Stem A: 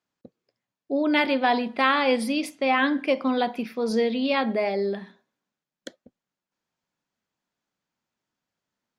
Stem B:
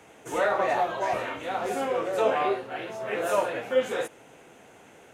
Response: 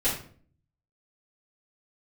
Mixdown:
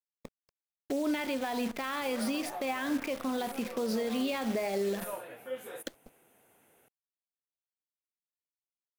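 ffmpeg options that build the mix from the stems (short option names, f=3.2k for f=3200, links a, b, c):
-filter_complex "[0:a]alimiter=limit=-18.5dB:level=0:latency=1:release=142,acrusher=bits=7:dc=4:mix=0:aa=0.000001,volume=0dB[a];[1:a]aexciter=amount=6.6:drive=7.9:freq=9.5k,adelay=1750,volume=-15dB[b];[a][b]amix=inputs=2:normalize=0,alimiter=limit=-23.5dB:level=0:latency=1:release=188"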